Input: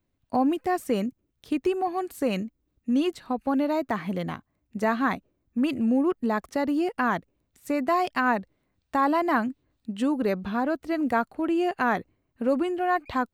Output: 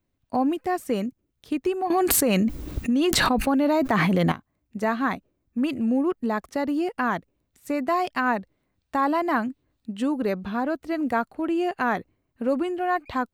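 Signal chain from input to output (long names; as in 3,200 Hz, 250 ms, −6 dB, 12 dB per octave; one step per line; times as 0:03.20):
0:01.90–0:04.32: envelope flattener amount 100%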